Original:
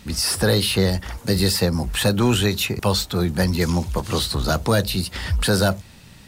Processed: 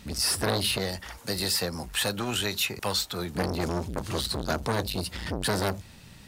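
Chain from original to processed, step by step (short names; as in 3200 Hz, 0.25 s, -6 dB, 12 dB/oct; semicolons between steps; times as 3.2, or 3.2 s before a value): 0.78–3.35 low shelf 380 Hz -11.5 dB; core saturation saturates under 820 Hz; gain -3.5 dB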